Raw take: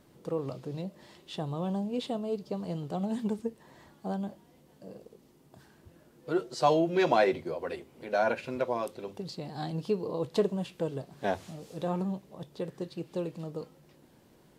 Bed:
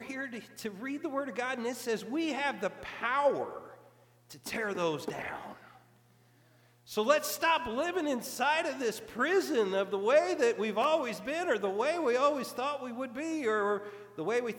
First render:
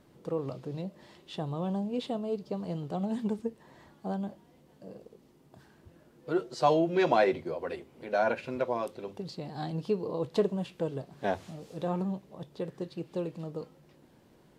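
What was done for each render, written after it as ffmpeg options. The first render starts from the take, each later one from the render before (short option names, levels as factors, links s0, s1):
-af "highshelf=f=5500:g=-6"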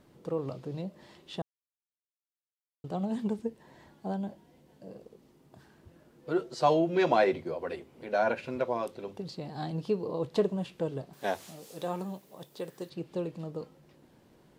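-filter_complex "[0:a]asettb=1/sr,asplit=3[s0][s1][s2];[s0]atrim=end=3.354[s3];[s1]atrim=start=3.35:end=4.9,asetpts=PTS-STARTPTS,afade=t=in:d=0.004:c=qsin,afade=t=out:st=1.546:d=0.004:c=qsin,bandreject=f=1200:w=8.5[s4];[s2]atrim=start=4.896[s5];[s3][s4]acrossfade=d=0.004:c1=hsin:c2=qsin[s6];[s6][s5]acrossfade=d=0.004:c1=qsin:c2=hsin,asettb=1/sr,asplit=3[s7][s8][s9];[s7]atrim=end=11.134[s10];[s8]atrim=start=11.13:end=12.9,asetpts=PTS-STARTPTS,afade=t=in:d=0.004:c=qsin,afade=t=out:st=1.766:d=0.004:c=qsin,aemphasis=mode=production:type=bsi[s11];[s9]atrim=start=12.896[s12];[s10][s11]acrossfade=d=0.004:c1=hsin:c2=qsin[s13];[s13][s12]acrossfade=d=0.004:c1=qsin:c2=hsin,asplit=3[s14][s15][s16];[s14]atrim=end=1.42,asetpts=PTS-STARTPTS,afade=t=out:st=1.416:d=0.004:c=hsin[s17];[s15]atrim=start=1.42:end=2.84,asetpts=PTS-STARTPTS,volume=0[s18];[s16]atrim=start=2.84,asetpts=PTS-STARTPTS,afade=t=in:d=0.004:c=hsin[s19];[s17][s18][s19]concat=n=3:v=0:a=1"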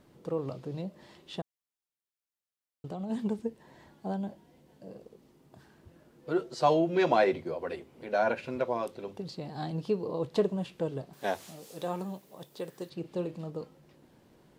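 -filter_complex "[0:a]asettb=1/sr,asplit=3[s0][s1][s2];[s0]atrim=end=1.404[s3];[s1]atrim=start=1.4:end=3.1,asetpts=PTS-STARTPTS,afade=t=in:d=0.004:c=qsin,afade=t=out:st=1.696:d=0.004:c=qsin,acompressor=threshold=0.0224:ratio=6:attack=3.2:release=140:knee=1:detection=peak[s4];[s2]atrim=start=3.096[s5];[s3][s4]acrossfade=d=0.004:c1=hsin:c2=qsin[s6];[s6][s5]acrossfade=d=0.004:c1=qsin:c2=hsin,asettb=1/sr,asplit=3[s7][s8][s9];[s7]atrim=end=13.004[s10];[s8]atrim=start=13:end=13.5,asetpts=PTS-STARTPTS,afade=t=in:d=0.004:c=qsin,afade=t=out:st=0.496:d=0.004:c=qsin,asplit=2[s11][s12];[s12]adelay=39,volume=0.251[s13];[s11][s13]amix=inputs=2:normalize=0,atrim=end_sample=22050[s14];[s9]atrim=start=13.496[s15];[s10][s14]acrossfade=d=0.004:c1=hsin:c2=qsin[s16];[s16][s15]acrossfade=d=0.004:c1=qsin:c2=hsin"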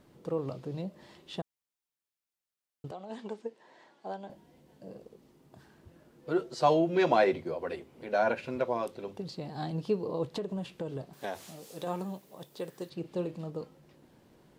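-filter_complex "[0:a]asettb=1/sr,asplit=3[s0][s1][s2];[s0]atrim=end=2.914[s3];[s1]atrim=start=2.91:end=4.3,asetpts=PTS-STARTPTS,afade=t=in:d=0.004:c=qsin,afade=t=out:st=1.386:d=0.004:c=qsin,highpass=440,lowpass=6500[s4];[s2]atrim=start=4.296[s5];[s3][s4]acrossfade=d=0.004:c1=hsin:c2=qsin[s6];[s6][s5]acrossfade=d=0.004:c1=qsin:c2=hsin,asettb=1/sr,asplit=3[s7][s8][s9];[s7]atrim=end=10.314[s10];[s8]atrim=start=10.31:end=11.87,asetpts=PTS-STARTPTS,afade=t=in:d=0.004:c=qsin,afade=t=out:st=1.556:d=0.004:c=qsin,acompressor=threshold=0.0282:ratio=6:attack=3.2:release=140:knee=1:detection=peak[s11];[s9]atrim=start=11.866[s12];[s10][s11]acrossfade=d=0.004:c1=hsin:c2=qsin[s13];[s13][s12]acrossfade=d=0.004:c1=qsin:c2=hsin"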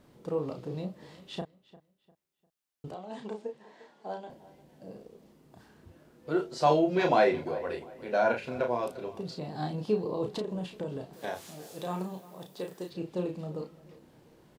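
-filter_complex "[0:a]asplit=2[s0][s1];[s1]adelay=33,volume=0.596[s2];[s0][s2]amix=inputs=2:normalize=0,asplit=2[s3][s4];[s4]adelay=350,lowpass=f=3400:p=1,volume=0.119,asplit=2[s5][s6];[s6]adelay=350,lowpass=f=3400:p=1,volume=0.34,asplit=2[s7][s8];[s8]adelay=350,lowpass=f=3400:p=1,volume=0.34[s9];[s3][s5][s7][s9]amix=inputs=4:normalize=0"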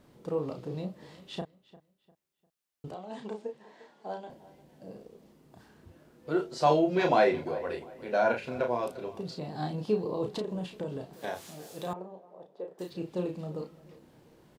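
-filter_complex "[0:a]asettb=1/sr,asplit=3[s0][s1][s2];[s0]atrim=end=11.934[s3];[s1]atrim=start=11.93:end=12.79,asetpts=PTS-STARTPTS,afade=t=in:d=0.004:c=qsin,afade=t=out:st=0.856:d=0.004:c=qsin,bandpass=f=560:t=q:w=1.6[s4];[s2]atrim=start=12.786[s5];[s3][s4]acrossfade=d=0.004:c1=hsin:c2=qsin[s6];[s6][s5]acrossfade=d=0.004:c1=qsin:c2=hsin"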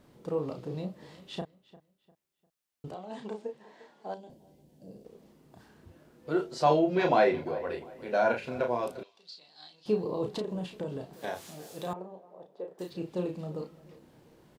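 -filter_complex "[0:a]asettb=1/sr,asplit=3[s0][s1][s2];[s0]atrim=end=4.144[s3];[s1]atrim=start=4.14:end=5.05,asetpts=PTS-STARTPTS,afade=t=in:d=0.004:c=qsin,afade=t=out:st=0.906:d=0.004:c=qsin,equalizer=f=1400:t=o:w=2.2:g=-15[s4];[s2]atrim=start=5.046[s5];[s3][s4]acrossfade=d=0.004:c1=hsin:c2=qsin[s6];[s6][s5]acrossfade=d=0.004:c1=qsin:c2=hsin,asettb=1/sr,asplit=3[s7][s8][s9];[s7]atrim=end=6.624[s10];[s8]atrim=start=6.62:end=7.85,asetpts=PTS-STARTPTS,afade=t=in:d=0.004:c=qsin,afade=t=out:st=1.226:d=0.004:c=qsin,equalizer=f=8100:t=o:w=1.4:g=-5[s11];[s9]atrim=start=7.846[s12];[s10][s11]acrossfade=d=0.004:c1=hsin:c2=qsin[s13];[s13][s12]acrossfade=d=0.004:c1=qsin:c2=hsin,asettb=1/sr,asplit=3[s14][s15][s16];[s14]atrim=end=9.034[s17];[s15]atrim=start=9.03:end=9.86,asetpts=PTS-STARTPTS,afade=t=in:d=0.004:c=qsin,afade=t=out:st=0.826:d=0.004:c=qsin,bandpass=f=4200:t=q:w=2.2[s18];[s16]atrim=start=9.856[s19];[s17][s18]acrossfade=d=0.004:c1=hsin:c2=qsin[s20];[s20][s19]acrossfade=d=0.004:c1=qsin:c2=hsin"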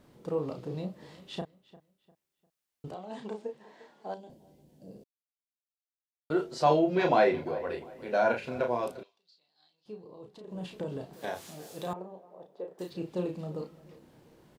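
-filter_complex "[0:a]asplit=5[s0][s1][s2][s3][s4];[s0]atrim=end=5.04,asetpts=PTS-STARTPTS,afade=t=out:st=5.036:d=0.004:c=hsin[s5];[s1]atrim=start=5.04:end=6.3,asetpts=PTS-STARTPTS,volume=0[s6];[s2]atrim=start=6.3:end=9.21,asetpts=PTS-STARTPTS,afade=t=in:d=0.004:c=hsin,afade=t=out:st=2.6:d=0.31:silence=0.149624[s7];[s3]atrim=start=9.21:end=10.4,asetpts=PTS-STARTPTS,volume=0.15[s8];[s4]atrim=start=10.4,asetpts=PTS-STARTPTS,afade=t=in:d=0.31:silence=0.149624[s9];[s5][s6][s7][s8][s9]concat=n=5:v=0:a=1"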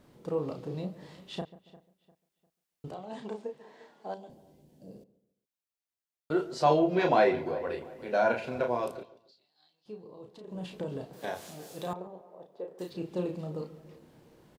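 -filter_complex "[0:a]asplit=2[s0][s1];[s1]adelay=140,lowpass=f=1700:p=1,volume=0.141,asplit=2[s2][s3];[s3]adelay=140,lowpass=f=1700:p=1,volume=0.36,asplit=2[s4][s5];[s5]adelay=140,lowpass=f=1700:p=1,volume=0.36[s6];[s0][s2][s4][s6]amix=inputs=4:normalize=0"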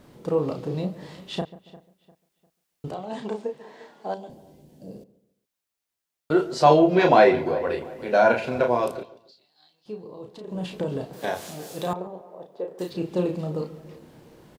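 -af "volume=2.51"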